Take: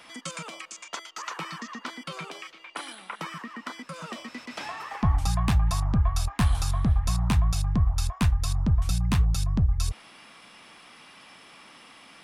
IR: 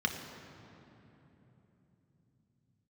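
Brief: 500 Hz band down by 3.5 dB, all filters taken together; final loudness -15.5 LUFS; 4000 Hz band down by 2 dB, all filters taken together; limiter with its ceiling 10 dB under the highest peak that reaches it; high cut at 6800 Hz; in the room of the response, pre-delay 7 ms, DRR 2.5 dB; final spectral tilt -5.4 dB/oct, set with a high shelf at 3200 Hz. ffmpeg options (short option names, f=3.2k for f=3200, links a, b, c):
-filter_complex "[0:a]lowpass=6.8k,equalizer=f=500:t=o:g=-5,highshelf=f=3.2k:g=4,equalizer=f=4k:t=o:g=-5,alimiter=limit=-22.5dB:level=0:latency=1,asplit=2[a][b];[1:a]atrim=start_sample=2205,adelay=7[c];[b][c]afir=irnorm=-1:irlink=0,volume=-9.5dB[d];[a][d]amix=inputs=2:normalize=0,volume=15.5dB"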